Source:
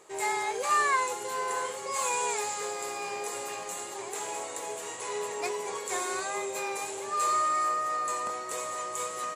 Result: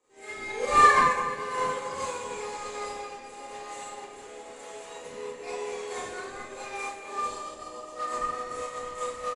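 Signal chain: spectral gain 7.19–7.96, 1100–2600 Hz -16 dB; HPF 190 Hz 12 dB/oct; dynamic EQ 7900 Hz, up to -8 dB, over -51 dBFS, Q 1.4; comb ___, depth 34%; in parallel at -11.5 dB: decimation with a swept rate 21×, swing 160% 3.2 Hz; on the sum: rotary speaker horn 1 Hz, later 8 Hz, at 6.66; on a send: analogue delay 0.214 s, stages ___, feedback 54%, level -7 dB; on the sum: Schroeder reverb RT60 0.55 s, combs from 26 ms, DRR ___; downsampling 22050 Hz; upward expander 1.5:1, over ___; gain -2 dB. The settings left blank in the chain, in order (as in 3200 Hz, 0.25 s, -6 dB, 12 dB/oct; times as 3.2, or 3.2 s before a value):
3.9 ms, 4096, -8 dB, -44 dBFS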